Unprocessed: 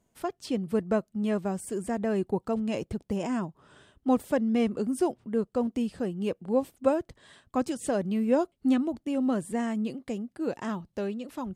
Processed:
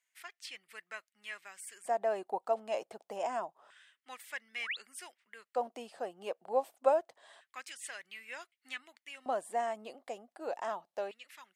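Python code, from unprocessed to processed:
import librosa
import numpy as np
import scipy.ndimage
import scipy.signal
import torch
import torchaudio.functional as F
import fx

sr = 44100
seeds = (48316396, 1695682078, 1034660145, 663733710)

y = fx.spec_paint(x, sr, seeds[0], shape='rise', start_s=4.53, length_s=0.24, low_hz=220.0, high_hz=4500.0, level_db=-38.0)
y = fx.filter_lfo_highpass(y, sr, shape='square', hz=0.27, low_hz=700.0, high_hz=2000.0, q=3.3)
y = F.gain(torch.from_numpy(y), -5.5).numpy()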